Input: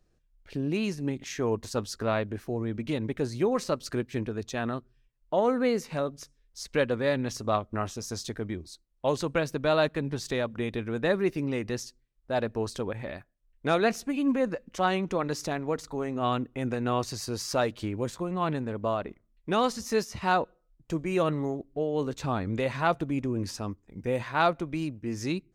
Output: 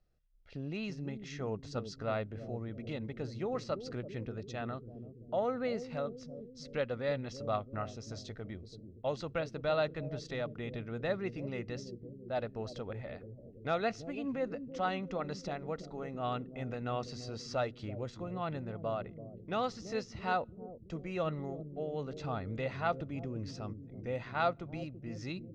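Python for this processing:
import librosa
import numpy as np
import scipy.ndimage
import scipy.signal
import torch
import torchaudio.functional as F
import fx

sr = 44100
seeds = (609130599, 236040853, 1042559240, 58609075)

y = scipy.signal.sosfilt(scipy.signal.butter(4, 5600.0, 'lowpass', fs=sr, output='sos'), x)
y = y + 0.41 * np.pad(y, (int(1.5 * sr / 1000.0), 0))[:len(y)]
y = fx.echo_bbd(y, sr, ms=335, stages=1024, feedback_pct=68, wet_db=-8)
y = F.gain(torch.from_numpy(y), -9.0).numpy()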